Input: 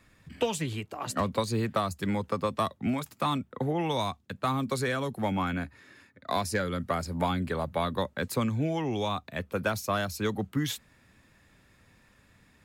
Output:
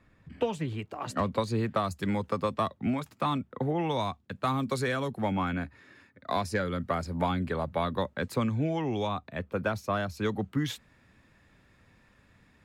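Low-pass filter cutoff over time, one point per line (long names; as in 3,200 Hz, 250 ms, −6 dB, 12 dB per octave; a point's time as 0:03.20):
low-pass filter 6 dB per octave
1,400 Hz
from 0:00.79 3,200 Hz
from 0:01.84 6,900 Hz
from 0:02.54 3,100 Hz
from 0:04.32 7,300 Hz
from 0:05.08 3,600 Hz
from 0:09.07 2,000 Hz
from 0:10.17 3,700 Hz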